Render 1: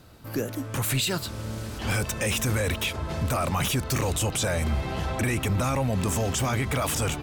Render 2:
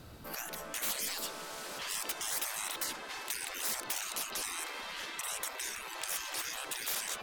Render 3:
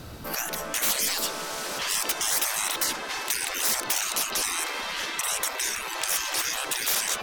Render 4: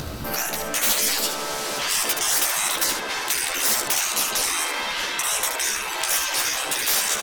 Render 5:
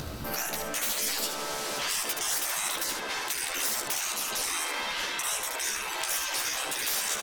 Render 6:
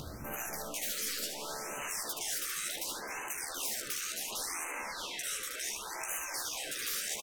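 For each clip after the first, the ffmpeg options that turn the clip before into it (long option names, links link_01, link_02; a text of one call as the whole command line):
ffmpeg -i in.wav -af "afftfilt=real='re*lt(hypot(re,im),0.0398)':imag='im*lt(hypot(re,im),0.0398)':win_size=1024:overlap=0.75" out.wav
ffmpeg -i in.wav -af "equalizer=frequency=5800:width=4.3:gain=3,aeval=exprs='0.126*(cos(1*acos(clip(val(0)/0.126,-1,1)))-cos(1*PI/2))+0.01*(cos(5*acos(clip(val(0)/0.126,-1,1)))-cos(5*PI/2))+0.00178*(cos(7*acos(clip(val(0)/0.126,-1,1)))-cos(7*PI/2))':channel_layout=same,volume=8dB" out.wav
ffmpeg -i in.wav -filter_complex "[0:a]acompressor=mode=upward:threshold=-29dB:ratio=2.5,asplit=2[link_01][link_02];[link_02]aecho=0:1:14|75:0.562|0.501[link_03];[link_01][link_03]amix=inputs=2:normalize=0,volume=2.5dB" out.wav
ffmpeg -i in.wav -af "alimiter=limit=-13.5dB:level=0:latency=1:release=143,volume=-5.5dB" out.wav
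ffmpeg -i in.wav -af "aecho=1:1:261:0.168,afftfilt=real='re*(1-between(b*sr/1024,770*pow(4300/770,0.5+0.5*sin(2*PI*0.69*pts/sr))/1.41,770*pow(4300/770,0.5+0.5*sin(2*PI*0.69*pts/sr))*1.41))':imag='im*(1-between(b*sr/1024,770*pow(4300/770,0.5+0.5*sin(2*PI*0.69*pts/sr))/1.41,770*pow(4300/770,0.5+0.5*sin(2*PI*0.69*pts/sr))*1.41))':win_size=1024:overlap=0.75,volume=-6.5dB" out.wav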